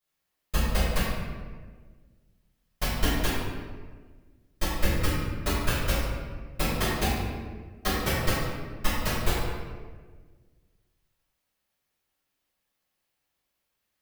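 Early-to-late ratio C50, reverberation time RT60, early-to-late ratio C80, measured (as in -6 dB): -2.0 dB, 1.5 s, 0.5 dB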